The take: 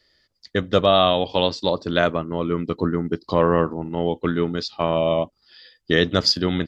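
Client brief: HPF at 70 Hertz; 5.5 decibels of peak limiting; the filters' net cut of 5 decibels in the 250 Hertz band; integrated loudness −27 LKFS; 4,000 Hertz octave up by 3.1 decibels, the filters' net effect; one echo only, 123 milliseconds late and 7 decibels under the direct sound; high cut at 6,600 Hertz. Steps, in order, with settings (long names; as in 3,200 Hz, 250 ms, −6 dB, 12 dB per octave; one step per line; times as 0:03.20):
high-pass filter 70 Hz
low-pass filter 6,600 Hz
parametric band 250 Hz −7.5 dB
parametric band 4,000 Hz +4.5 dB
brickwall limiter −8.5 dBFS
single-tap delay 123 ms −7 dB
level −4 dB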